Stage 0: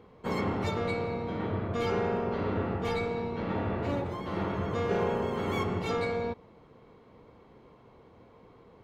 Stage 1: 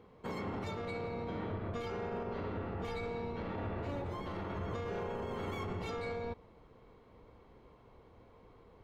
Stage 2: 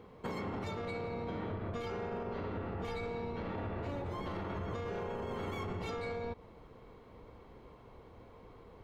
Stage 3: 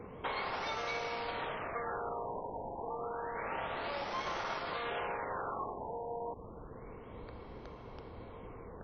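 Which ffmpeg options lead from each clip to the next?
-af "asubboost=boost=3:cutoff=79,alimiter=level_in=3dB:limit=-24dB:level=0:latency=1:release=51,volume=-3dB,volume=-4dB"
-af "acompressor=threshold=-40dB:ratio=6,volume=4.5dB"
-filter_complex "[0:a]acrossover=split=530[a][b];[a]aeval=exprs='(mod(188*val(0)+1,2)-1)/188':c=same[c];[c][b]amix=inputs=2:normalize=0,afftfilt=real='re*lt(b*sr/1024,990*pow(6400/990,0.5+0.5*sin(2*PI*0.29*pts/sr)))':imag='im*lt(b*sr/1024,990*pow(6400/990,0.5+0.5*sin(2*PI*0.29*pts/sr)))':win_size=1024:overlap=0.75,volume=6.5dB"

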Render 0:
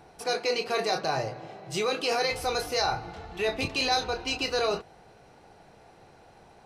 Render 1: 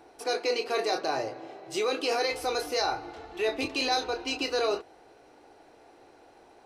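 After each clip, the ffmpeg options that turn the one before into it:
-af "lowshelf=f=230:t=q:w=3:g=-7.5,volume=-2dB"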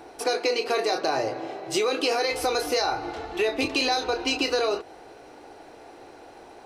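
-af "acompressor=threshold=-30dB:ratio=6,volume=9dB"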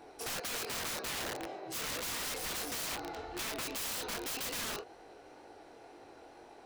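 -filter_complex "[0:a]asplit=2[a][b];[b]asoftclip=type=tanh:threshold=-25dB,volume=-11.5dB[c];[a][c]amix=inputs=2:normalize=0,flanger=delay=20:depth=5.5:speed=2,aeval=exprs='(mod(20*val(0)+1,2)-1)/20':c=same,volume=-7dB"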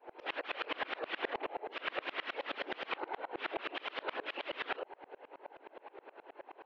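-af "afftfilt=real='hypot(re,im)*cos(2*PI*random(0))':imag='hypot(re,im)*sin(2*PI*random(1))':win_size=512:overlap=0.75,highpass=f=230:t=q:w=0.5412,highpass=f=230:t=q:w=1.307,lowpass=f=3.1k:t=q:w=0.5176,lowpass=f=3.1k:t=q:w=0.7071,lowpass=f=3.1k:t=q:w=1.932,afreqshift=64,aeval=exprs='val(0)*pow(10,-29*if(lt(mod(-9.5*n/s,1),2*abs(-9.5)/1000),1-mod(-9.5*n/s,1)/(2*abs(-9.5)/1000),(mod(-9.5*n/s,1)-2*abs(-9.5)/1000)/(1-2*abs(-9.5)/1000))/20)':c=same,volume=16dB"

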